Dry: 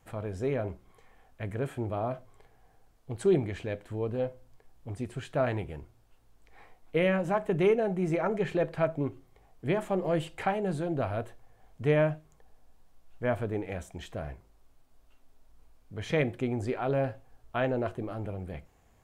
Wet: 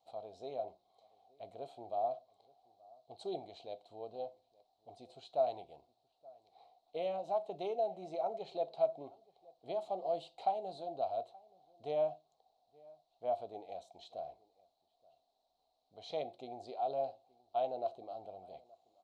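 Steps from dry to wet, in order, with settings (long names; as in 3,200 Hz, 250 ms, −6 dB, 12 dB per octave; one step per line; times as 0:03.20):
pair of resonant band-passes 1,700 Hz, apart 2.5 octaves
slap from a distant wall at 150 metres, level −24 dB
level +2.5 dB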